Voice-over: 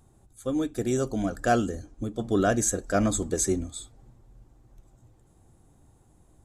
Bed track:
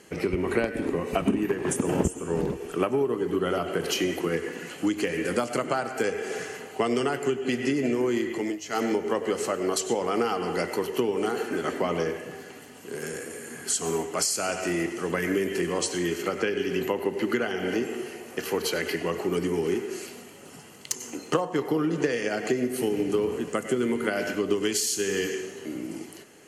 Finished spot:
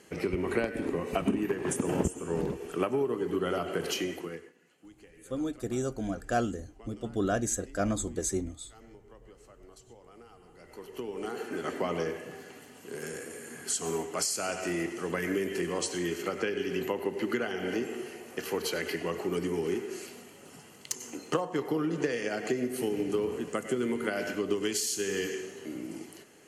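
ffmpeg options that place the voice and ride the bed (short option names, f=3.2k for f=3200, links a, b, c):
-filter_complex "[0:a]adelay=4850,volume=-5.5dB[a];[1:a]volume=19.5dB,afade=t=out:st=3.86:d=0.67:silence=0.0630957,afade=t=in:st=10.59:d=1.22:silence=0.0668344[b];[a][b]amix=inputs=2:normalize=0"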